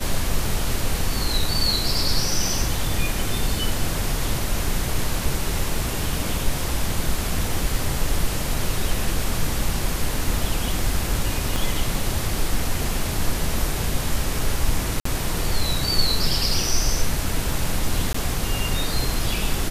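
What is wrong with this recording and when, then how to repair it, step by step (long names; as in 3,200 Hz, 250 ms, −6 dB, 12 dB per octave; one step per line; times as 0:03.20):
0:11.56: click
0:15.00–0:15.05: drop-out 54 ms
0:18.13–0:18.14: drop-out 14 ms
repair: click removal
repair the gap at 0:15.00, 54 ms
repair the gap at 0:18.13, 14 ms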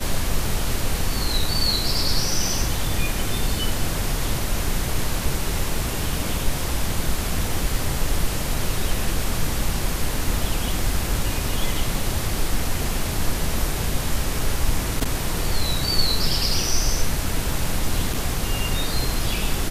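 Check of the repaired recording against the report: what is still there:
0:11.56: click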